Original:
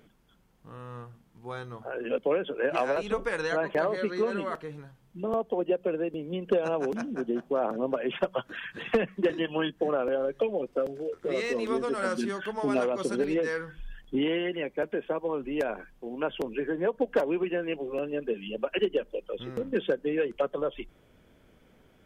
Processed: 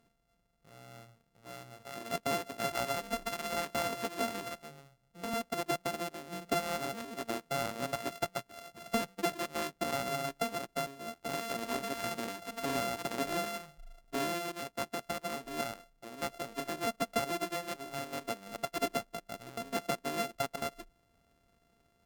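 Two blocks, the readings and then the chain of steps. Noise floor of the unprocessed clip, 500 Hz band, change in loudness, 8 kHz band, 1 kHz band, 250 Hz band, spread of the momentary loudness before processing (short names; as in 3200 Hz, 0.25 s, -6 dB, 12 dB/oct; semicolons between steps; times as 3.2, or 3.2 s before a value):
-62 dBFS, -10.5 dB, -6.5 dB, +10.0 dB, -0.5 dB, -9.0 dB, 11 LU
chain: sample sorter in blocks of 64 samples; added harmonics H 7 -26 dB, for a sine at -15.5 dBFS; gain -7 dB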